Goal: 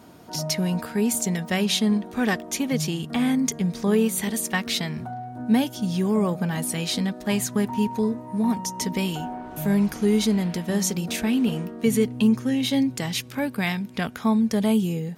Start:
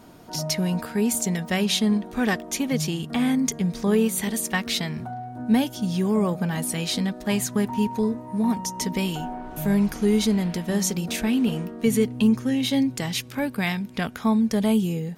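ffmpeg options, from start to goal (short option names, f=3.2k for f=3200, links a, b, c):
-af "highpass=57"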